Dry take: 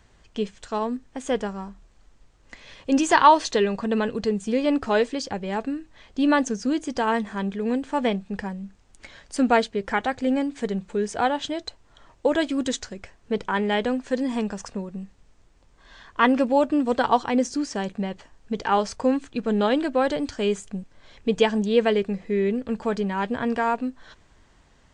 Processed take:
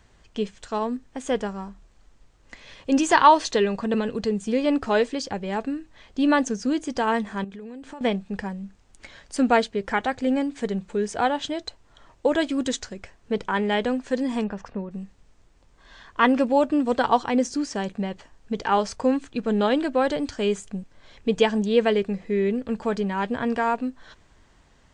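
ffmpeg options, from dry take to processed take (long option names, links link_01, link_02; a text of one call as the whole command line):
ffmpeg -i in.wav -filter_complex "[0:a]asettb=1/sr,asplit=3[link_01][link_02][link_03];[link_01]atrim=end=3.944[link_04];[link_02]atrim=start=3.94:end=4.41,asetpts=PTS-STARTPTS,afade=type=in:duration=0.004:curve=qsin,afade=type=out:start_time=0.466:duration=0.004:curve=qsin,acrossover=split=460|3000[link_05][link_06][link_07];[link_06]acompressor=threshold=-28dB:ratio=6:attack=3.2:release=140:knee=2.83:detection=peak[link_08];[link_05][link_08][link_07]amix=inputs=3:normalize=0[link_09];[link_03]atrim=start=4.406[link_10];[link_04][link_09]acrossfade=duration=0.004:curve1=hsin:curve2=qsin[link_11];[link_11][link_10]acrossfade=duration=0.004:curve1=qsin:curve2=hsin,asettb=1/sr,asplit=3[link_12][link_13][link_14];[link_12]atrim=end=7.444[link_15];[link_13]atrim=start=7.44:end=8.01,asetpts=PTS-STARTPTS,afade=type=in:duration=0.004:curve=qsin,afade=type=out:start_time=0.566:duration=0.004:curve=qsin,acompressor=threshold=-35dB:ratio=10:attack=3.2:release=140:knee=1:detection=peak[link_16];[link_14]atrim=start=8.006[link_17];[link_15][link_16]acrossfade=duration=0.004:curve1=hsin:curve2=qsin[link_18];[link_18][link_17]acrossfade=duration=0.004:curve1=qsin:curve2=hsin,asettb=1/sr,asplit=3[link_19][link_20][link_21];[link_19]atrim=end=14.444[link_22];[link_20]atrim=start=14.44:end=14.91,asetpts=PTS-STARTPTS,afade=type=in:duration=0.004:curve=qsin,afade=type=out:start_time=0.466:duration=0.004:curve=qsin,lowpass=2600[link_23];[link_21]atrim=start=14.906[link_24];[link_22][link_23]acrossfade=duration=0.004:curve1=hsin:curve2=qsin[link_25];[link_25][link_24]acrossfade=duration=0.004:curve1=qsin:curve2=hsin" out.wav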